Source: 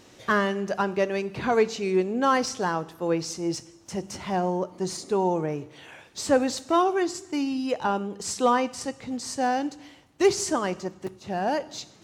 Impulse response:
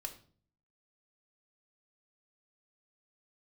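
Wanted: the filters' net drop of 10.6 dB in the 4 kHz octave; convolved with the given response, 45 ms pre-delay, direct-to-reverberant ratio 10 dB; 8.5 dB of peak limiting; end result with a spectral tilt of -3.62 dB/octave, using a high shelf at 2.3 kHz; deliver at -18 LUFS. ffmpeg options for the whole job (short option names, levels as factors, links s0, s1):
-filter_complex "[0:a]highshelf=f=2300:g=-8,equalizer=f=4000:t=o:g=-6.5,alimiter=limit=0.112:level=0:latency=1,asplit=2[s0][s1];[1:a]atrim=start_sample=2205,adelay=45[s2];[s1][s2]afir=irnorm=-1:irlink=0,volume=0.398[s3];[s0][s3]amix=inputs=2:normalize=0,volume=3.76"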